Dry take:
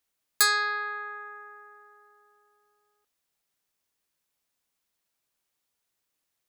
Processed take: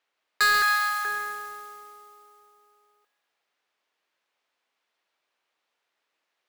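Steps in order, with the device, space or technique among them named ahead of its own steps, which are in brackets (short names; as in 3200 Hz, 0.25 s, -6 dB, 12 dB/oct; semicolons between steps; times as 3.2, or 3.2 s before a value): carbon microphone (BPF 430–2900 Hz; soft clip -25 dBFS, distortion -11 dB; modulation noise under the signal 15 dB); 0.62–1.05 steep high-pass 640 Hz 96 dB/oct; thin delay 0.136 s, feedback 50%, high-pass 2400 Hz, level -6.5 dB; gain +9 dB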